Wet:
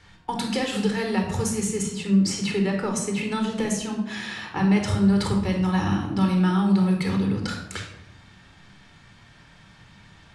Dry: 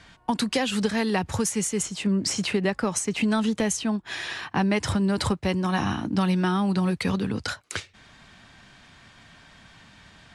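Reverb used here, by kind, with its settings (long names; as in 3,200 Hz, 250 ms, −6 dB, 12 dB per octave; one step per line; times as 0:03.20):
rectangular room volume 2,400 cubic metres, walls furnished, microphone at 4.2 metres
level −5 dB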